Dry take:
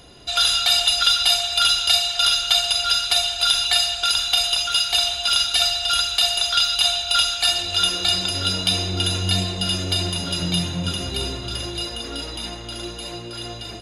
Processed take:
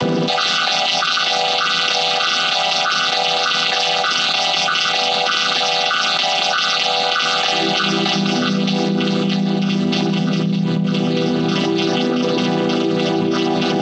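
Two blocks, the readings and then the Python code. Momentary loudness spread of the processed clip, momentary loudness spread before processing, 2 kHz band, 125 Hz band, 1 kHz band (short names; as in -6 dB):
3 LU, 14 LU, +8.5 dB, +6.0 dB, +10.0 dB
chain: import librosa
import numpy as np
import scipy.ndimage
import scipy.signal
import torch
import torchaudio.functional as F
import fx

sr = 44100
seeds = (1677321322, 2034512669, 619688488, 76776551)

y = fx.chord_vocoder(x, sr, chord='minor triad', root=52)
y = fx.air_absorb(y, sr, metres=110.0)
y = fx.env_flatten(y, sr, amount_pct=100)
y = y * librosa.db_to_amplitude(-5.5)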